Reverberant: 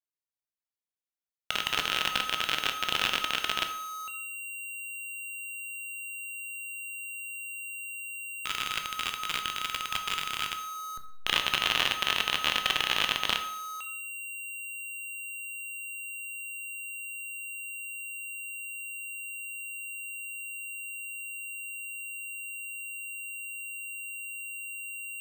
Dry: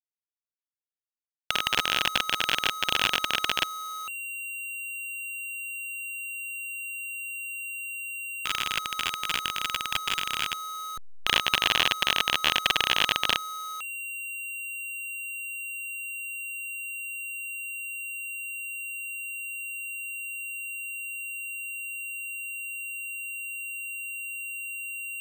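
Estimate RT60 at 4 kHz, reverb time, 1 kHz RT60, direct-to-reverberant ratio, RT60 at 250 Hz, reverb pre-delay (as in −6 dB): 0.55 s, 0.70 s, 0.65 s, 6.0 dB, 0.65 s, 13 ms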